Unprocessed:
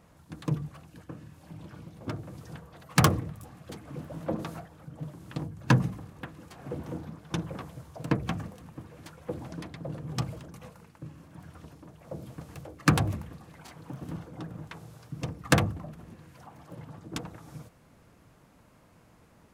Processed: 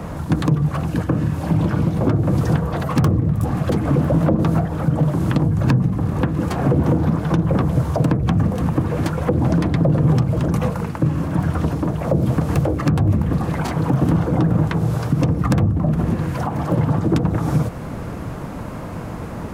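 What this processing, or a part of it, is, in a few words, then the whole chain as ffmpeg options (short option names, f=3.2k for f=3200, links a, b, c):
mastering chain: -filter_complex "[0:a]equalizer=f=1.2k:t=o:w=1.8:g=4,acrossover=split=130|430[a][b][c];[a]acompressor=threshold=-46dB:ratio=4[d];[b]acompressor=threshold=-43dB:ratio=4[e];[c]acompressor=threshold=-47dB:ratio=4[f];[d][e][f]amix=inputs=3:normalize=0,acompressor=threshold=-48dB:ratio=1.5,tiltshelf=f=840:g=5.5,alimiter=level_in=32dB:limit=-1dB:release=50:level=0:latency=1,volume=-6.5dB"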